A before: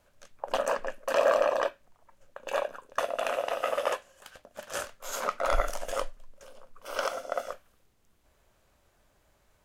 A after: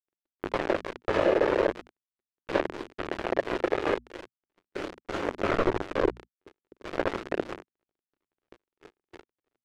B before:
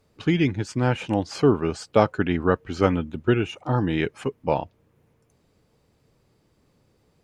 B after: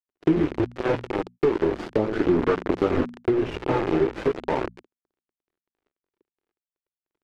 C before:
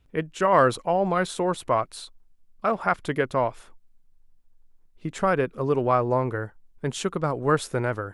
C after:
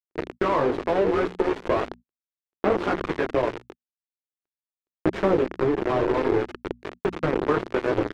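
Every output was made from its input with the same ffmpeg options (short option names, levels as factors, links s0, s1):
-filter_complex "[0:a]aeval=exprs='val(0)+0.5*0.0891*sgn(val(0))':c=same,acrossover=split=720[s0][s1];[s0]aeval=exprs='val(0)*(1-0.7/2+0.7/2*cos(2*PI*3*n/s))':c=same[s2];[s1]aeval=exprs='val(0)*(1-0.7/2-0.7/2*cos(2*PI*3*n/s))':c=same[s3];[s2][s3]amix=inputs=2:normalize=0,flanger=delay=16.5:depth=4:speed=0.86,asplit=9[s4][s5][s6][s7][s8][s9][s10][s11][s12];[s5]adelay=81,afreqshift=-99,volume=0.316[s13];[s6]adelay=162,afreqshift=-198,volume=0.2[s14];[s7]adelay=243,afreqshift=-297,volume=0.126[s15];[s8]adelay=324,afreqshift=-396,volume=0.0794[s16];[s9]adelay=405,afreqshift=-495,volume=0.0495[s17];[s10]adelay=486,afreqshift=-594,volume=0.0313[s18];[s11]adelay=567,afreqshift=-693,volume=0.0197[s19];[s12]adelay=648,afreqshift=-792,volume=0.0124[s20];[s4][s13][s14][s15][s16][s17][s18][s19][s20]amix=inputs=9:normalize=0,acrusher=bits=3:mix=0:aa=0.000001,equalizer=f=360:t=o:w=0.98:g=13.5,bandreject=f=60:t=h:w=6,bandreject=f=120:t=h:w=6,bandreject=f=180:t=h:w=6,bandreject=f=240:t=h:w=6,agate=range=0.0141:threshold=0.01:ratio=16:detection=peak,lowpass=2100,acompressor=threshold=0.126:ratio=6,aphaser=in_gain=1:out_gain=1:delay=2.4:decay=0.21:speed=0.39:type=sinusoidal"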